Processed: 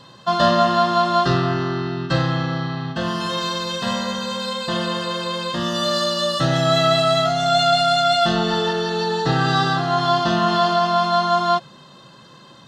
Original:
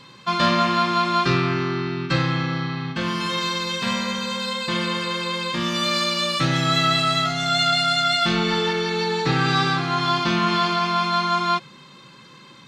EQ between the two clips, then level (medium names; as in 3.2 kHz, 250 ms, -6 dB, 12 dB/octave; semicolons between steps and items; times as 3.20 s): Butterworth band-stop 2.3 kHz, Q 3.5; peaking EQ 86 Hz +5.5 dB 0.99 oct; peaking EQ 660 Hz +12.5 dB 0.41 oct; 0.0 dB